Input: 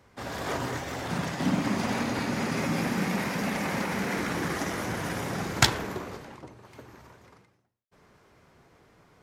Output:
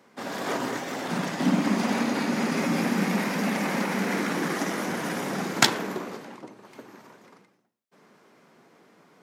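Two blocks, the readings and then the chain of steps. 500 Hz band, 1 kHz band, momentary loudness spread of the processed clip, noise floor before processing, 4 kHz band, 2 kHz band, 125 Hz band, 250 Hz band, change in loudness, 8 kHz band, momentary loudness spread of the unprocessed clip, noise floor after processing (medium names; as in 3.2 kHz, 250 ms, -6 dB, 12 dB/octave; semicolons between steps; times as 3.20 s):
+3.0 dB, +2.5 dB, 12 LU, -64 dBFS, +2.0 dB, +2.0 dB, -1.5 dB, +4.0 dB, +2.5 dB, +2.0 dB, 12 LU, -63 dBFS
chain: Chebyshev high-pass 200 Hz, order 3; bass shelf 420 Hz +4 dB; trim +2 dB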